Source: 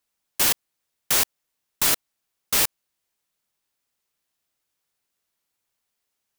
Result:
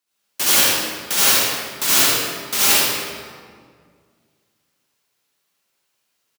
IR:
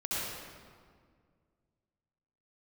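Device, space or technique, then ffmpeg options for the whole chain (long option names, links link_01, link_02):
PA in a hall: -filter_complex "[0:a]highpass=130,equalizer=frequency=4000:width_type=o:width=2.3:gain=3,aecho=1:1:80:0.562[link_01];[1:a]atrim=start_sample=2205[link_02];[link_01][link_02]afir=irnorm=-1:irlink=0,volume=1dB"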